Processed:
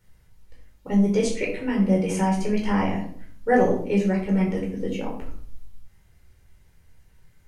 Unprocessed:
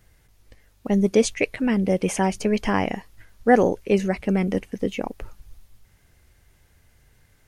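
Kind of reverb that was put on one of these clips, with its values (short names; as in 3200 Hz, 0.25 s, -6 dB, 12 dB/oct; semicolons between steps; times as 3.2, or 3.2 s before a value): shoebox room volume 640 m³, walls furnished, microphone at 4.5 m; gain -9.5 dB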